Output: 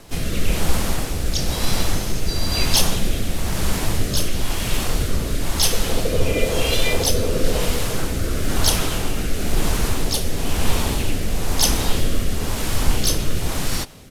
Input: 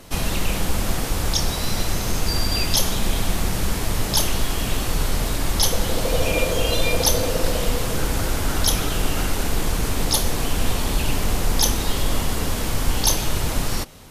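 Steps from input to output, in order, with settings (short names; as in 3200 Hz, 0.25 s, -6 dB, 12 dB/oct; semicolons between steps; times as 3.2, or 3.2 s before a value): harmoniser -3 st -5 dB, +4 st -13 dB; rotary speaker horn 1 Hz; gain +1.5 dB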